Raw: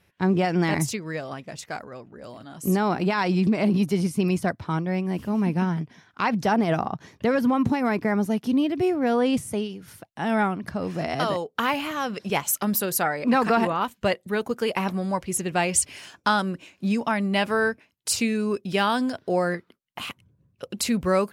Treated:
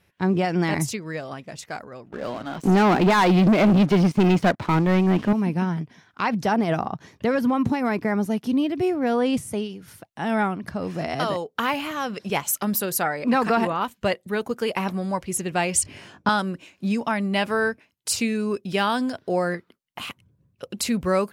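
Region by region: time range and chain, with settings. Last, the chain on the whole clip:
2.12–5.33 BPF 160–3400 Hz + sample leveller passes 3
15.83–16.29 HPF 97 Hz + tilt -3.5 dB/oct + doubler 20 ms -2.5 dB
whole clip: dry

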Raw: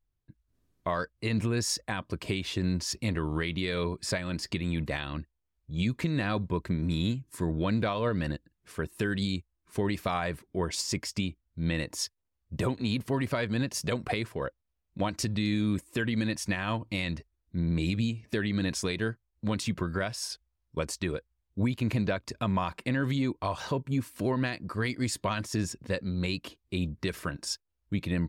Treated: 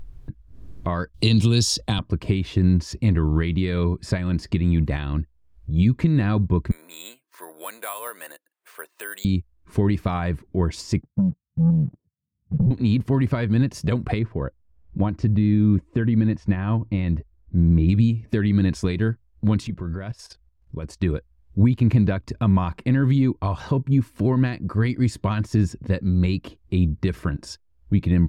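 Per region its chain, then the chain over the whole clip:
1.14–1.99 resonant high shelf 2600 Hz +10 dB, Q 3 + three-band squash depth 70%
6.71–9.25 Bessel high-pass 920 Hz, order 4 + high shelf 7000 Hz -7 dB + careless resampling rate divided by 4×, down filtered, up zero stuff
11.01–12.71 Butterworth band-pass 160 Hz, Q 1.9 + sample leveller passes 2
14.19–17.89 LPF 5500 Hz + high shelf 2400 Hz -12 dB
19.67–21 high shelf 8100 Hz -4.5 dB + level quantiser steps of 13 dB
whole clip: dynamic EQ 560 Hz, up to -5 dB, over -44 dBFS, Q 1.9; upward compressor, threshold -38 dBFS; tilt -3 dB/oct; gain +3.5 dB

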